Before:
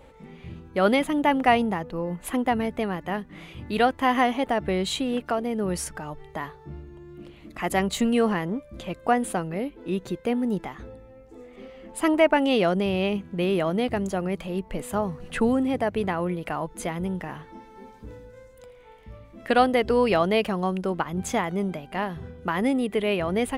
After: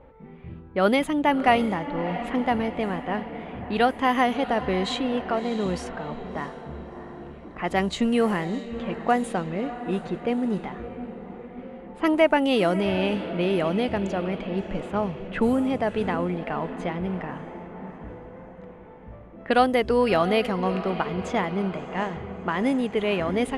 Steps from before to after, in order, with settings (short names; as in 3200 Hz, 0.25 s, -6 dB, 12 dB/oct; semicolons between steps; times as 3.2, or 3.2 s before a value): diffused feedback echo 0.661 s, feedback 56%, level -11.5 dB; low-pass opened by the level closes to 1500 Hz, open at -17 dBFS